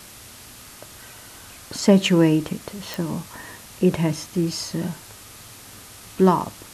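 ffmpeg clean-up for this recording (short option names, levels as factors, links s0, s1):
-af "adeclick=t=4,afwtdn=0.0079"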